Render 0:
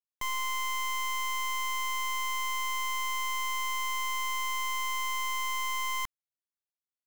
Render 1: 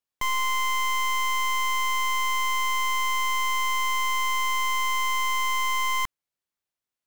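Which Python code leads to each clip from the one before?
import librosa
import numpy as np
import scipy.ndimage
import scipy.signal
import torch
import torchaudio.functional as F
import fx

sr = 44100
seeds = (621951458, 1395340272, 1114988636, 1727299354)

y = fx.high_shelf(x, sr, hz=4700.0, db=-4.5)
y = y * 10.0 ** (7.5 / 20.0)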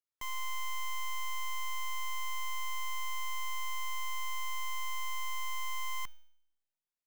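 y = (np.mod(10.0 ** (26.0 / 20.0) * x + 1.0, 2.0) - 1.0) / 10.0 ** (26.0 / 20.0)
y = fx.comb_fb(y, sr, f0_hz=310.0, decay_s=0.71, harmonics='all', damping=0.0, mix_pct=70)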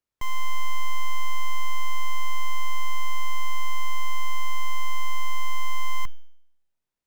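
y = fx.tilt_eq(x, sr, slope=-2.0)
y = y * 10.0 ** (8.0 / 20.0)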